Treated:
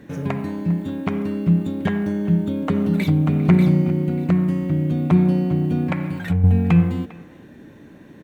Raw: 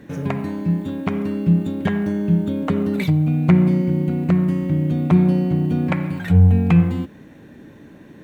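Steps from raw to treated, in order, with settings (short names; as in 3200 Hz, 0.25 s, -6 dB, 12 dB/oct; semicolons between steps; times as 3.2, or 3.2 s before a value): 5.82–6.44 compressor 5:1, threshold -16 dBFS, peak gain reduction 8 dB; speakerphone echo 0.4 s, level -17 dB; 2.15–3.31 echo throw 0.59 s, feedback 15%, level -5 dB; gain -1 dB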